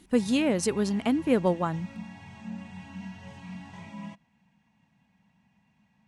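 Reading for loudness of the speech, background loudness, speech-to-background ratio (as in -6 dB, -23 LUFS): -26.5 LUFS, -43.5 LUFS, 17.0 dB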